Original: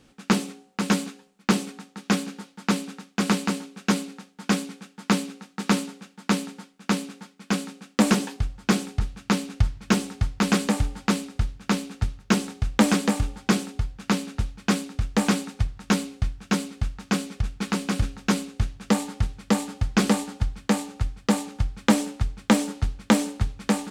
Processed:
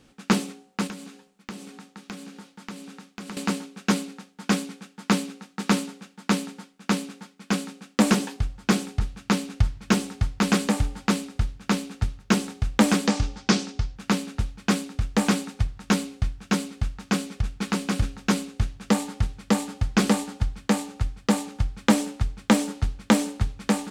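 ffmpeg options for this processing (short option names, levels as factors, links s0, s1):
-filter_complex "[0:a]asettb=1/sr,asplit=3[s0][s1][s2];[s0]atrim=end=0.874[s3];[s1]atrim=start=0.87:end=3.37,asetpts=PTS-STARTPTS,afade=t=in:d=0.004:c=qsin,afade=t=out:st=2.496:d=0.004:c=qsin,acompressor=threshold=0.0112:ratio=3:attack=3.2:release=140:knee=1:detection=peak[s4];[s2]atrim=start=3.366[s5];[s3][s4]acrossfade=d=0.004:c1=hsin:c2=qsin[s6];[s6][s5]acrossfade=d=0.004:c1=qsin:c2=hsin,asettb=1/sr,asplit=3[s7][s8][s9];[s7]atrim=end=13.074[s10];[s8]atrim=start=13.07:end=13.96,asetpts=PTS-STARTPTS,afade=t=in:d=0.004:c=qsin,afade=t=out:st=0.886:d=0.004:c=qsin,lowpass=f=5600:t=q:w=2.2[s11];[s9]atrim=start=13.956[s12];[s10][s11]acrossfade=d=0.004:c1=hsin:c2=qsin[s13];[s13][s12]acrossfade=d=0.004:c1=qsin:c2=hsin"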